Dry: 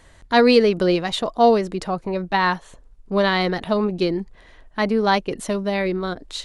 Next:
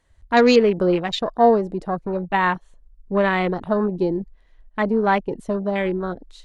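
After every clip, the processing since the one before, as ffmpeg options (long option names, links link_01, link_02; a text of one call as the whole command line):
ffmpeg -i in.wav -af "afwtdn=0.0398" out.wav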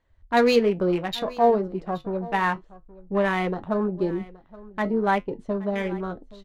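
ffmpeg -i in.wav -af "adynamicsmooth=sensitivity=5:basefreq=4000,flanger=delay=9.4:depth=1.6:regen=-63:speed=0.34:shape=triangular,aecho=1:1:823:0.1" out.wav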